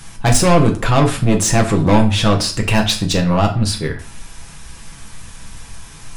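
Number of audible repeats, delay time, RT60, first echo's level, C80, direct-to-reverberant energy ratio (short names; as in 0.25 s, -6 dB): none, none, 0.45 s, none, 16.0 dB, 2.0 dB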